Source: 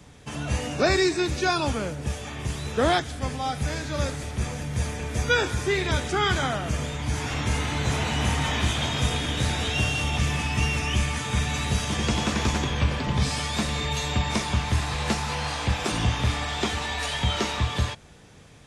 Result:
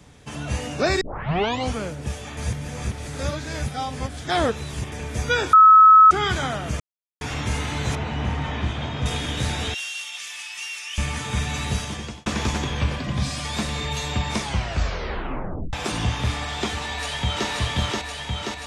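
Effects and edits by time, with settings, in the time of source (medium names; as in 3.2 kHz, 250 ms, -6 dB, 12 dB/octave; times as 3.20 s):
1.01 s: tape start 0.73 s
2.37–4.92 s: reverse
5.53–6.11 s: bleep 1.29 kHz -7 dBFS
6.80–7.21 s: mute
7.95–9.06 s: tape spacing loss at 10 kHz 23 dB
9.74–10.98 s: Bessel high-pass 2.8 kHz
11.73–12.26 s: fade out
12.96–13.45 s: comb of notches 440 Hz
14.41 s: tape stop 1.32 s
16.83–17.48 s: echo throw 530 ms, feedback 75%, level -1.5 dB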